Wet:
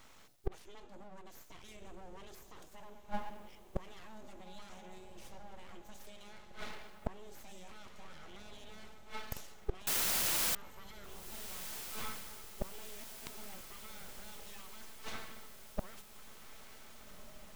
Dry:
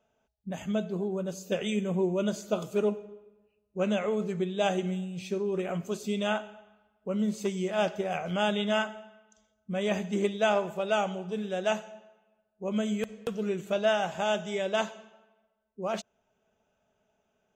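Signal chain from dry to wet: treble shelf 2.1 kHz +9 dB; hum notches 50/100/150/200/250/300/350/400/450 Hz; full-wave rectifier; peak limiter -26.5 dBFS, peak gain reduction 16 dB; inverted gate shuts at -36 dBFS, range -31 dB; 9.87–10.55 s: word length cut 8-bit, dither triangular; echo that smears into a reverb 1581 ms, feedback 61%, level -12 dB; trim +15.5 dB

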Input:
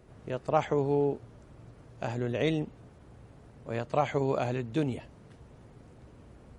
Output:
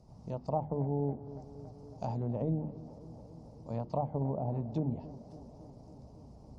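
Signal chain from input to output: hum notches 50/100/150/200/250/300/350/400 Hz; low-pass that closes with the level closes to 600 Hz, closed at -24.5 dBFS; FFT filter 130 Hz 0 dB, 190 Hz +4 dB, 390 Hz -10 dB, 900 Hz +1 dB, 1.6 kHz -24 dB, 2.3 kHz -18 dB, 3.4 kHz -14 dB, 5.1 kHz +5 dB, 8.2 kHz -8 dB; tape echo 278 ms, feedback 85%, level -14.5 dB, low-pass 1.4 kHz

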